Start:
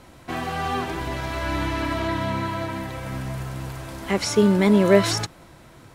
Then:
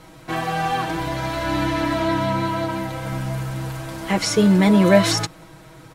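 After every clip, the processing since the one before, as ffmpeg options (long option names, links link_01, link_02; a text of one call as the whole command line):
ffmpeg -i in.wav -af "aecho=1:1:6.3:0.78,volume=1.5dB" out.wav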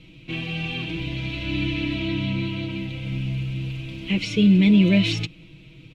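ffmpeg -i in.wav -af "firequalizer=gain_entry='entry(230,0);entry(760,-22);entry(1700,-18);entry(2500,8);entry(4900,-11);entry(9600,-23)':delay=0.05:min_phase=1" out.wav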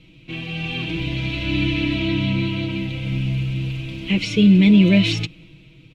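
ffmpeg -i in.wav -af "dynaudnorm=framelen=150:gausssize=9:maxgain=6dB,volume=-1.5dB" out.wav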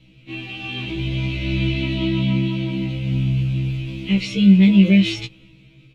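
ffmpeg -i in.wav -af "afftfilt=real='re*1.73*eq(mod(b,3),0)':imag='im*1.73*eq(mod(b,3),0)':win_size=2048:overlap=0.75" out.wav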